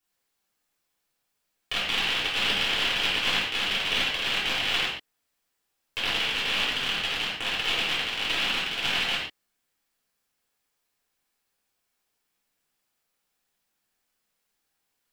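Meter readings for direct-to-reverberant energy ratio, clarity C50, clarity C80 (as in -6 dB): -9.5 dB, 0.5 dB, 4.0 dB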